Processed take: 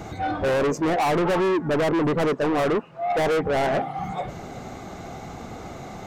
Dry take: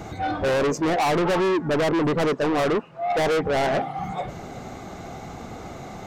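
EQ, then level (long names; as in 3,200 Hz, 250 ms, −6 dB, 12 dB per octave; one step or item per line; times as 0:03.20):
dynamic equaliser 4,800 Hz, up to −4 dB, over −40 dBFS, Q 0.83
0.0 dB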